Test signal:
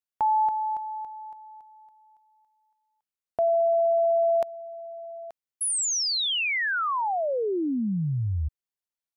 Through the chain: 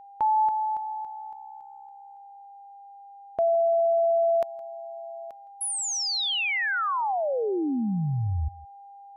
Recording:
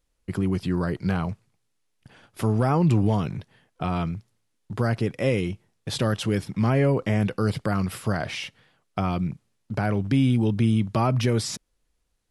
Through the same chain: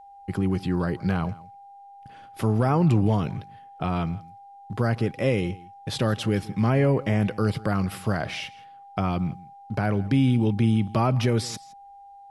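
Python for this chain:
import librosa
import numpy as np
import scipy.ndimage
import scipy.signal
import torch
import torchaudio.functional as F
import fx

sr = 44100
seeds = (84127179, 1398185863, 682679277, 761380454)

y = fx.peak_eq(x, sr, hz=8200.0, db=-3.5, octaves=1.3)
y = y + 10.0 ** (-45.0 / 20.0) * np.sin(2.0 * np.pi * 800.0 * np.arange(len(y)) / sr)
y = y + 10.0 ** (-21.0 / 20.0) * np.pad(y, (int(165 * sr / 1000.0), 0))[:len(y)]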